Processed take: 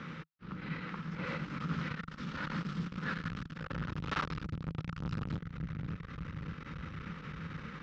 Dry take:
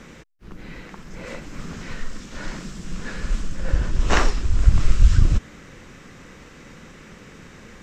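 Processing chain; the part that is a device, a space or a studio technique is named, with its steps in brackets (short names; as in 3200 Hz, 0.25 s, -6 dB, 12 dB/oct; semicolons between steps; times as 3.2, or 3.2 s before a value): analogue delay pedal into a guitar amplifier (analogue delay 0.577 s, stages 2048, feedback 56%, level -10 dB; tube stage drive 30 dB, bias 0.4; speaker cabinet 96–4300 Hz, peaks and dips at 160 Hz +10 dB, 380 Hz -6 dB, 670 Hz -9 dB, 1300 Hz +9 dB); gain -1 dB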